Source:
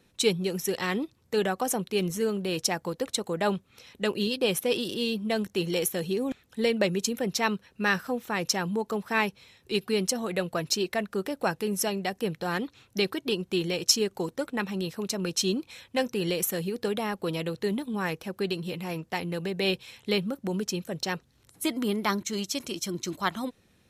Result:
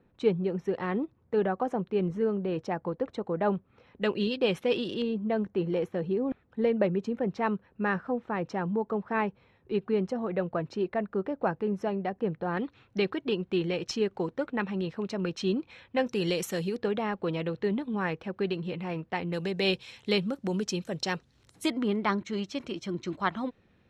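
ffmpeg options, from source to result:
ffmpeg -i in.wav -af "asetnsamples=nb_out_samples=441:pad=0,asendcmd='4.02 lowpass f 2900;5.02 lowpass f 1300;12.57 lowpass f 2400;16.07 lowpass f 6100;16.77 lowpass f 2500;19.33 lowpass f 6500;21.7 lowpass f 2500',lowpass=1300" out.wav

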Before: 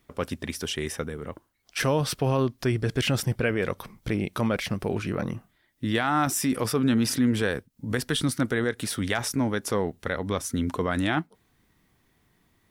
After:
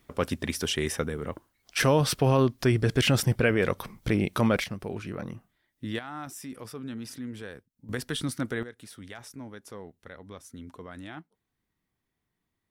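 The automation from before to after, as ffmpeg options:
ffmpeg -i in.wav -af "asetnsamples=nb_out_samples=441:pad=0,asendcmd='4.64 volume volume -7dB;5.99 volume volume -15dB;7.89 volume volume -5.5dB;8.63 volume volume -16.5dB',volume=2dB" out.wav

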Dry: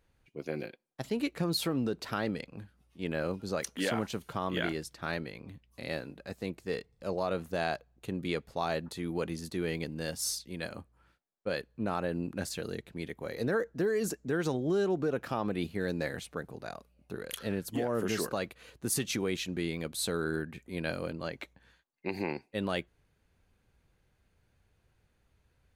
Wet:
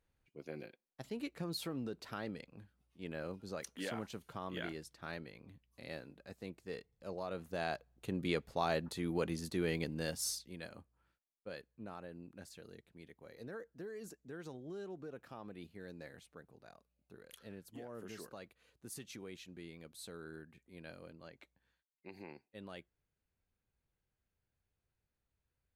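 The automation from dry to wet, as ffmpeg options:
ffmpeg -i in.wav -af "volume=-2dB,afade=type=in:start_time=7.31:duration=0.95:silence=0.398107,afade=type=out:start_time=9.97:duration=0.66:silence=0.398107,afade=type=out:start_time=10.63:duration=1.5:silence=0.446684" out.wav

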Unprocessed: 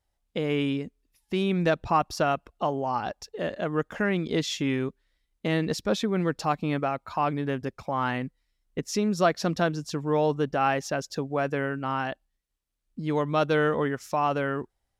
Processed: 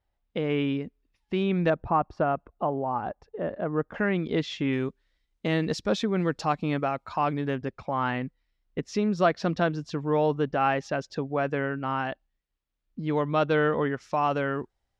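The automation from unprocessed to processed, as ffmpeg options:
ffmpeg -i in.wav -af "asetnsamples=nb_out_samples=441:pad=0,asendcmd='1.7 lowpass f 1300;3.94 lowpass f 3100;4.73 lowpass f 6600;7.56 lowpass f 3800;14.14 lowpass f 6500',lowpass=3200" out.wav

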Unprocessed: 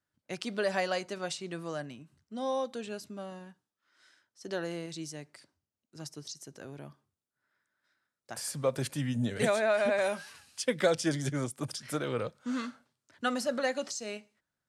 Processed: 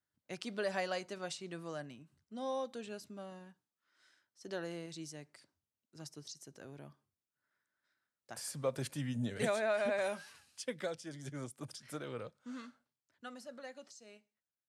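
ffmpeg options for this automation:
ffmpeg -i in.wav -af "volume=2dB,afade=type=out:start_time=10.26:duration=0.81:silence=0.251189,afade=type=in:start_time=11.07:duration=0.36:silence=0.398107,afade=type=out:start_time=12.08:duration=1.23:silence=0.398107" out.wav

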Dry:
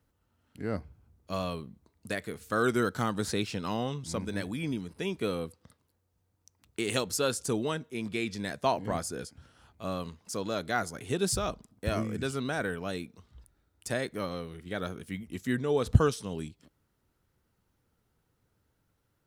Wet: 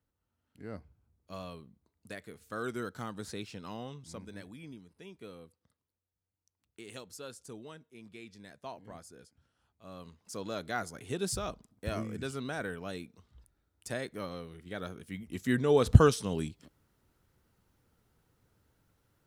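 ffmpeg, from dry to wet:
ffmpeg -i in.wav -af "volume=9.5dB,afade=type=out:start_time=3.92:duration=0.97:silence=0.473151,afade=type=in:start_time=9.83:duration=0.63:silence=0.266073,afade=type=in:start_time=15.08:duration=0.65:silence=0.398107" out.wav

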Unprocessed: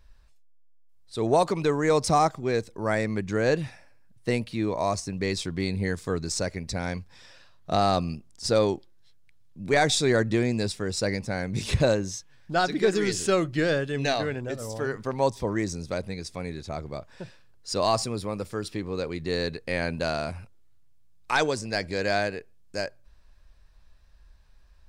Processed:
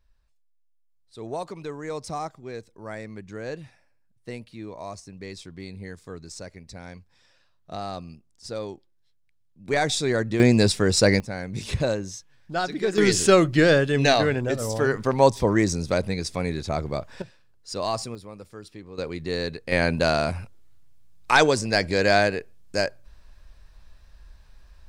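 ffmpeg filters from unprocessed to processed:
ffmpeg -i in.wav -af "asetnsamples=nb_out_samples=441:pad=0,asendcmd='9.68 volume volume -1.5dB;10.4 volume volume 9dB;11.2 volume volume -2.5dB;12.98 volume volume 7dB;17.22 volume volume -3.5dB;18.15 volume volume -10dB;18.98 volume volume 0dB;19.72 volume volume 6.5dB',volume=-10.5dB" out.wav

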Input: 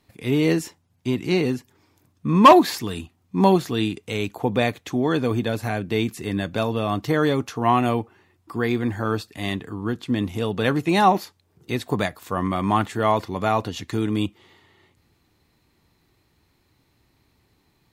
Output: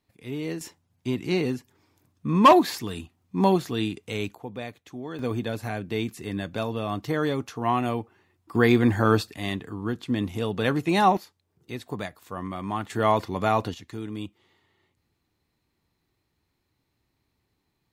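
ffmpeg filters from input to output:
ffmpeg -i in.wav -af "asetnsamples=nb_out_samples=441:pad=0,asendcmd='0.61 volume volume -4dB;4.35 volume volume -14.5dB;5.19 volume volume -5.5dB;8.55 volume volume 4dB;9.34 volume volume -3dB;11.17 volume volume -9.5dB;12.9 volume volume -1.5dB;13.74 volume volume -11dB',volume=-12dB" out.wav

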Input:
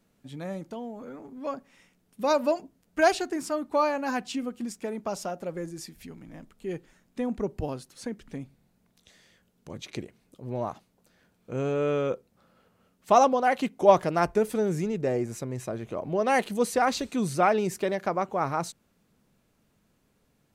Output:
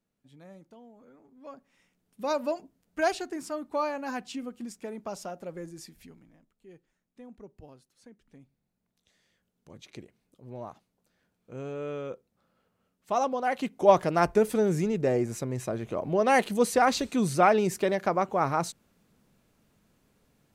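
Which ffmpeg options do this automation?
ffmpeg -i in.wav -af "volume=14.5dB,afade=type=in:start_time=1.34:duration=0.95:silence=0.334965,afade=type=out:start_time=5.97:duration=0.41:silence=0.223872,afade=type=in:start_time=8.2:duration=1.62:silence=0.354813,afade=type=in:start_time=13.12:duration=1.23:silence=0.298538" out.wav

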